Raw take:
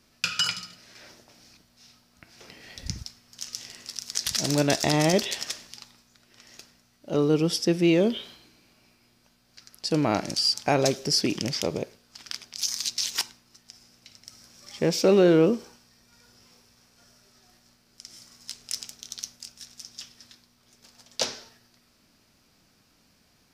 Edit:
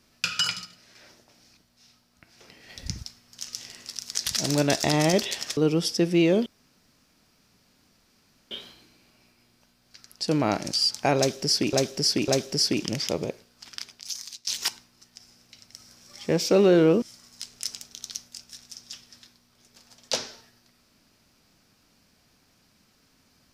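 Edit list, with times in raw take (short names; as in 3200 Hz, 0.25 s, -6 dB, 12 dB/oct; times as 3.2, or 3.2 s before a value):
0.65–2.69 gain -3.5 dB
5.57–7.25 cut
8.14 insert room tone 2.05 s
10.81–11.36 loop, 3 plays
12.21–13 fade out, to -20 dB
15.55–18.1 cut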